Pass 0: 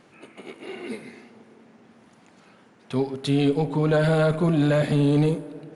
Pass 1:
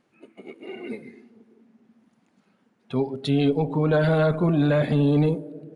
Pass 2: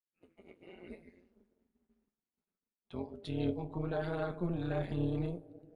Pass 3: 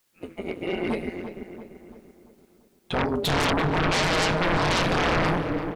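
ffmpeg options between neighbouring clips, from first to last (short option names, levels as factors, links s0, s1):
-af "afftdn=nr=14:nf=-40"
-af "flanger=delay=9.7:depth=4.9:regen=52:speed=0.71:shape=triangular,tremolo=f=180:d=0.824,agate=range=0.0224:threshold=0.00112:ratio=3:detection=peak,volume=0.398"
-filter_complex "[0:a]aeval=exprs='0.0794*sin(PI/2*10*val(0)/0.0794)':c=same,asplit=2[s0][s1];[s1]adelay=340,lowpass=f=2400:p=1,volume=0.355,asplit=2[s2][s3];[s3]adelay=340,lowpass=f=2400:p=1,volume=0.5,asplit=2[s4][s5];[s5]adelay=340,lowpass=f=2400:p=1,volume=0.5,asplit=2[s6][s7];[s7]adelay=340,lowpass=f=2400:p=1,volume=0.5,asplit=2[s8][s9];[s9]adelay=340,lowpass=f=2400:p=1,volume=0.5,asplit=2[s10][s11];[s11]adelay=340,lowpass=f=2400:p=1,volume=0.5[s12];[s0][s2][s4][s6][s8][s10][s12]amix=inputs=7:normalize=0,volume=1.26"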